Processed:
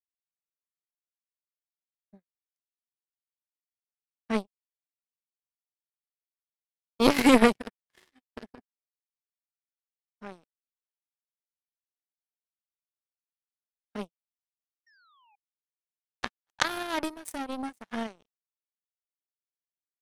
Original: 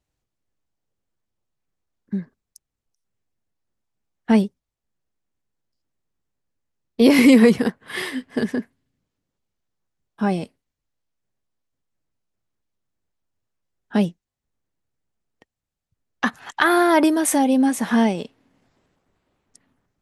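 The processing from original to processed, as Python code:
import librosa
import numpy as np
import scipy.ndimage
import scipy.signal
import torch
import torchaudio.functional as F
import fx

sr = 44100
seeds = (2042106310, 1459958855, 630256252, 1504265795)

y = fx.spec_paint(x, sr, seeds[0], shape='fall', start_s=14.86, length_s=0.5, low_hz=790.0, high_hz=1900.0, level_db=-25.0)
y = fx.power_curve(y, sr, exponent=3.0)
y = y * 10.0 ** (1.5 / 20.0)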